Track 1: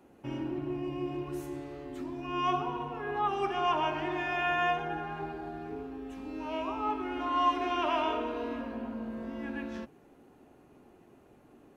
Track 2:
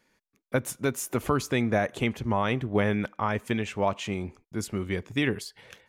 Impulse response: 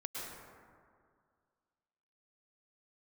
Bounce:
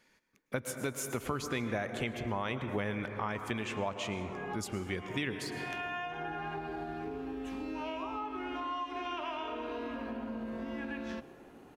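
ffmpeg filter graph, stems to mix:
-filter_complex "[0:a]acompressor=threshold=-38dB:ratio=6,adelay=1350,volume=2.5dB,asplit=2[a][b];[b]volume=-17dB[c];[1:a]volume=-4dB,asplit=3[d][e][f];[e]volume=-6.5dB[g];[f]apad=whole_len=578273[h];[a][h]sidechaincompress=threshold=-45dB:ratio=8:attack=16:release=344[i];[2:a]atrim=start_sample=2205[j];[c][g]amix=inputs=2:normalize=0[k];[k][j]afir=irnorm=-1:irlink=0[l];[i][d][l]amix=inputs=3:normalize=0,equalizer=f=3k:w=0.43:g=4,acompressor=threshold=-35dB:ratio=2.5"

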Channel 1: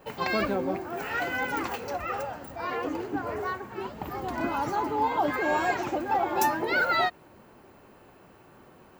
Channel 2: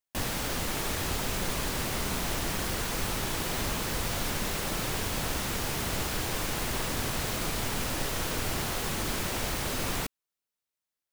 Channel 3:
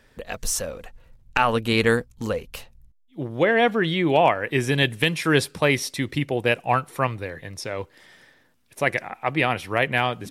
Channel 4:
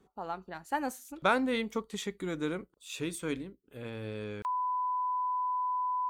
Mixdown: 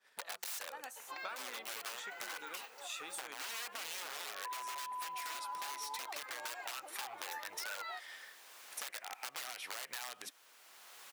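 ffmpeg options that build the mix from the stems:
-filter_complex "[0:a]adelay=900,volume=-13.5dB[a];[1:a]adelay=2150,volume=-18dB[b];[2:a]agate=range=-33dB:threshold=-50dB:ratio=3:detection=peak,acompressor=threshold=-27dB:ratio=4,aeval=exprs='(mod(21.1*val(0)+1,2)-1)/21.1':c=same,volume=1.5dB,asplit=2[c][d];[3:a]dynaudnorm=f=290:g=7:m=12dB,volume=-10dB[e];[d]apad=whole_len=585340[f];[b][f]sidechaincompress=threshold=-43dB:ratio=8:attack=7.3:release=956[g];[g][c][e]amix=inputs=3:normalize=0,acompressor=threshold=-33dB:ratio=6,volume=0dB[h];[a][h]amix=inputs=2:normalize=0,highpass=870,acompressor=threshold=-42dB:ratio=2.5"

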